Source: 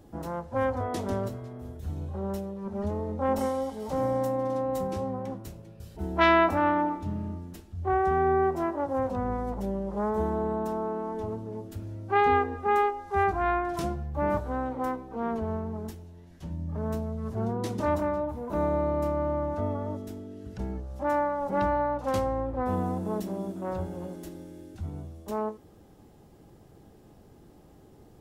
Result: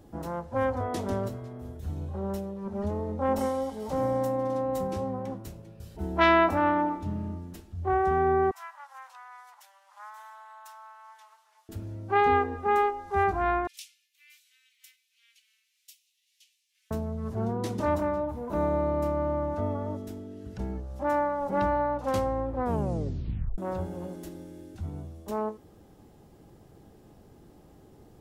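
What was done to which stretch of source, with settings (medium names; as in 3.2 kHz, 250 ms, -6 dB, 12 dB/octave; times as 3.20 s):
8.51–11.69 s: Bessel high-pass 1.7 kHz, order 8
13.67–16.91 s: steep high-pass 2.4 kHz 48 dB/octave
22.64 s: tape stop 0.94 s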